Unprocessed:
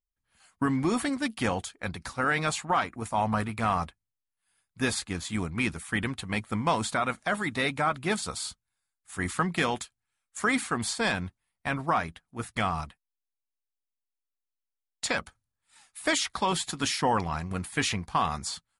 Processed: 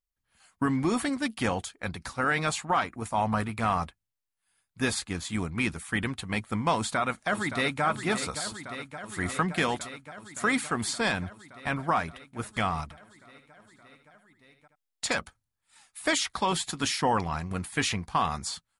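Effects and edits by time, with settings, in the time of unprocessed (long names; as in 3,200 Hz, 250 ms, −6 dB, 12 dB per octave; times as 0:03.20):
0:06.75–0:07.83: delay throw 570 ms, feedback 80%, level −10 dB
0:12.83–0:15.18: single-tap delay 76 ms −8.5 dB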